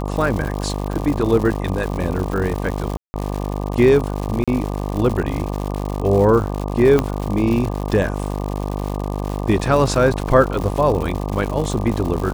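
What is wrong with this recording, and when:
buzz 50 Hz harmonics 24 -24 dBFS
crackle 180/s -24 dBFS
2.97–3.14 gap 0.17 s
4.44–4.48 gap 36 ms
6.99 pop -5 dBFS

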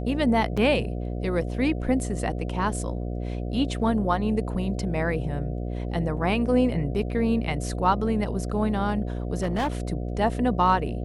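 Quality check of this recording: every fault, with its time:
buzz 60 Hz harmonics 12 -30 dBFS
0.57 gap 5 ms
9.37–9.68 clipped -21 dBFS

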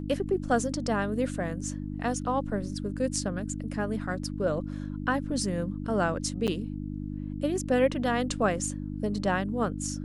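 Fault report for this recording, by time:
hum 50 Hz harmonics 6 -35 dBFS
6.47–6.48 gap 8.2 ms

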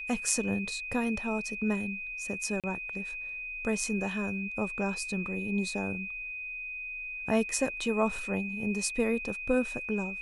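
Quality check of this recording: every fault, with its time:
tone 2500 Hz -36 dBFS
2.6–2.64 gap 37 ms

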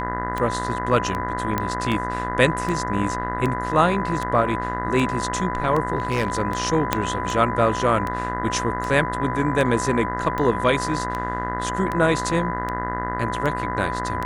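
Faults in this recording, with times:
buzz 60 Hz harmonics 34 -29 dBFS
tick 78 rpm -14 dBFS
tone 1000 Hz -27 dBFS
1.58 pop -9 dBFS
5.97–6.39 clipped -16 dBFS
6.93 pop -3 dBFS

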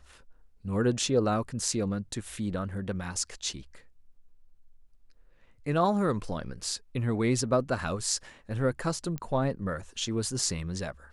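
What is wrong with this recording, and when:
9.18 pop -21 dBFS

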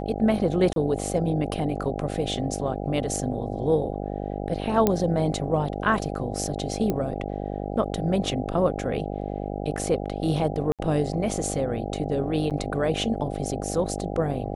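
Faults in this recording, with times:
buzz 50 Hz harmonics 16 -31 dBFS
0.73–0.76 gap 32 ms
4.87 pop -7 dBFS
6.9 pop -13 dBFS
10.72–10.79 gap 67 ms
12.5–12.51 gap 7.7 ms

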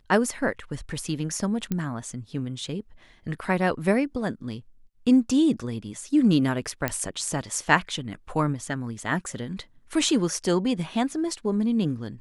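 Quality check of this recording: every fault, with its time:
1.72 pop -14 dBFS
6.88 pop -9 dBFS

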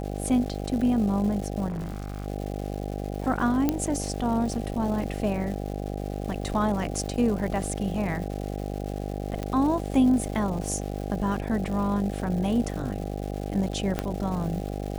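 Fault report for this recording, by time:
buzz 50 Hz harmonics 16 -32 dBFS
crackle 370/s -35 dBFS
1.68–2.26 clipped -28.5 dBFS
3.69 pop -10 dBFS
9.43 pop -18 dBFS
13.99 pop -12 dBFS

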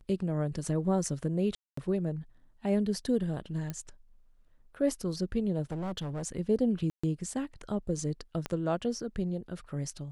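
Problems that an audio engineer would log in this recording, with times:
1.55–1.77 gap 0.224 s
3.7 pop -22 dBFS
5.62–6.27 clipped -31.5 dBFS
6.9–7.04 gap 0.135 s
8.46 pop -19 dBFS

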